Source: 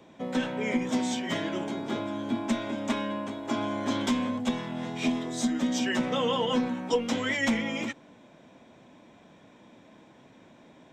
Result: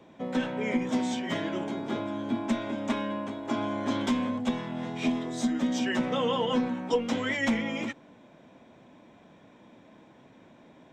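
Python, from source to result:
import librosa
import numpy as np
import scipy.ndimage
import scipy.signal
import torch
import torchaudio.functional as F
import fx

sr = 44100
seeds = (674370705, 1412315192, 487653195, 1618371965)

y = fx.high_shelf(x, sr, hz=4000.0, db=-6.5)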